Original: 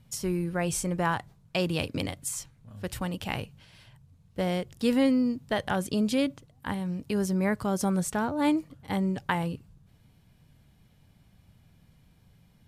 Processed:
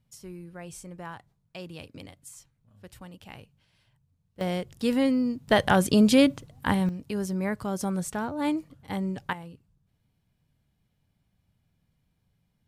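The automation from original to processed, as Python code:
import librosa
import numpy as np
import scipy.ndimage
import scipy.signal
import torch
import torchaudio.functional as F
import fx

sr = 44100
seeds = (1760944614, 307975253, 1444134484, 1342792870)

y = fx.gain(x, sr, db=fx.steps((0.0, -13.0), (4.41, -0.5), (5.48, 7.5), (6.89, -2.5), (9.33, -12.5)))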